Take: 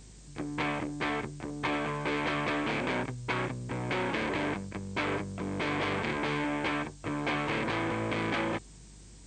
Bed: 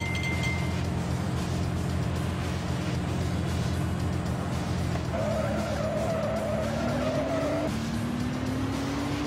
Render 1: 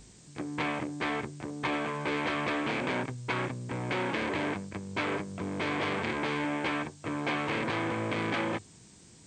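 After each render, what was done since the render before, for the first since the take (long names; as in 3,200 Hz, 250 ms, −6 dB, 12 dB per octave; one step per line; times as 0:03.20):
hum removal 50 Hz, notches 3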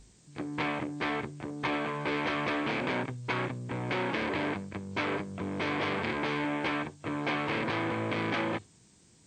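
noise reduction from a noise print 6 dB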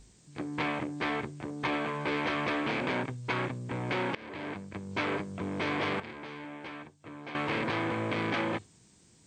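0:04.15–0:04.91: fade in, from −19.5 dB
0:06.00–0:07.35: clip gain −11.5 dB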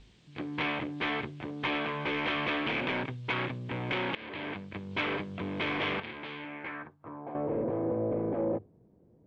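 soft clipping −25 dBFS, distortion −15 dB
low-pass filter sweep 3,200 Hz → 540 Hz, 0:06.39–0:07.48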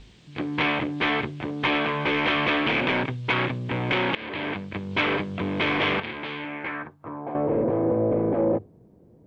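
level +8 dB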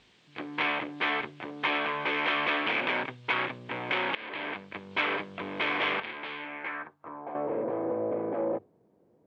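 high-pass filter 940 Hz 6 dB per octave
high-shelf EQ 3,400 Hz −10 dB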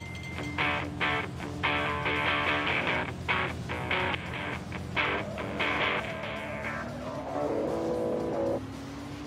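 mix in bed −10 dB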